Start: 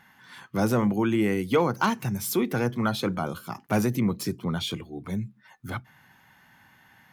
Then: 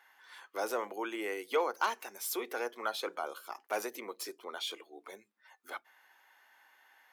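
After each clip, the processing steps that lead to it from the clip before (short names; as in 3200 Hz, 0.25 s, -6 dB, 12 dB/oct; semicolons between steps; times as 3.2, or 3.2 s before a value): inverse Chebyshev high-pass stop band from 160 Hz, stop band 50 dB; gain -6 dB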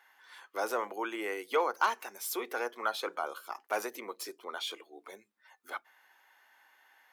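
dynamic EQ 1200 Hz, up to +4 dB, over -47 dBFS, Q 1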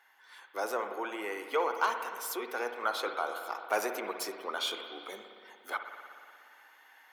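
spring tank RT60 2.2 s, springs 58 ms, chirp 70 ms, DRR 6 dB; vocal rider 2 s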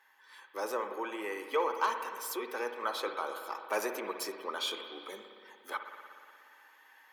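notch comb 710 Hz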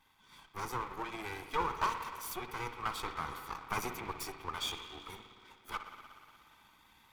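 minimum comb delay 0.87 ms; gain -1.5 dB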